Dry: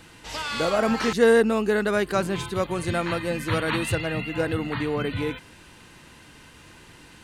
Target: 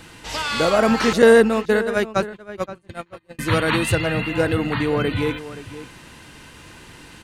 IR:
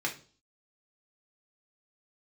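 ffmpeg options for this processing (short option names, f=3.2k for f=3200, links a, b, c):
-filter_complex "[0:a]asettb=1/sr,asplit=3[a][b][c];[a]atrim=end=1.224[d];[b]atrim=start=1.22:end=3.39,asetpts=PTS-STARTPTS,afade=t=in:d=0.004:c=qsin,afade=t=out:st=2.166:d=0.004:c=qsin,agate=range=-41dB:threshold=-21dB:ratio=16:detection=peak[e];[c]atrim=start=3.386[f];[d][e]acrossfade=d=0.004:c1=hsin:c2=qsin[g];[g][f]acrossfade=d=0.004:c1=qsin:c2=hsin,asplit=2[h][i];[i]adelay=524.8,volume=-14dB,highshelf=f=4k:g=-11.8[j];[h][j]amix=inputs=2:normalize=0,volume=5.5dB"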